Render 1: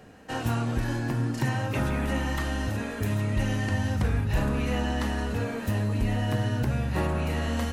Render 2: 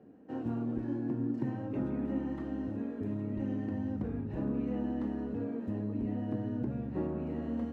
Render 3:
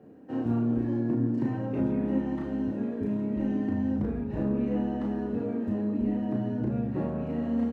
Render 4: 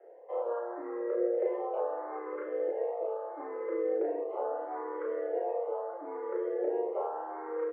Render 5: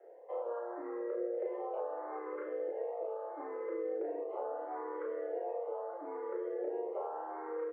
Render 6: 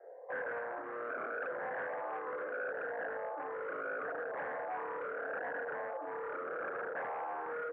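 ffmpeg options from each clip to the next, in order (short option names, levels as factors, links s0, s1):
-af "bandpass=f=290:t=q:w=2:csg=0"
-filter_complex "[0:a]asplit=2[s0][s1];[s1]adelay=34,volume=0.75[s2];[s0][s2]amix=inputs=2:normalize=0,volume=1.58"
-filter_complex "[0:a]afreqshift=240,lowpass=f=1500:t=q:w=1.9,asplit=2[s0][s1];[s1]afreqshift=0.76[s2];[s0][s2]amix=inputs=2:normalize=1,volume=0.75"
-af "acompressor=threshold=0.0178:ratio=2,volume=0.794"
-af "aeval=exprs='0.0126*(abs(mod(val(0)/0.0126+3,4)-2)-1)':c=same,highpass=200,equalizer=f=220:t=q:w=4:g=-7,equalizer=f=350:t=q:w=4:g=-7,equalizer=f=530:t=q:w=4:g=4,equalizer=f=750:t=q:w=4:g=3,equalizer=f=1100:t=q:w=4:g=5,equalizer=f=1600:t=q:w=4:g=9,lowpass=f=2000:w=0.5412,lowpass=f=2000:w=1.3066,volume=1.12"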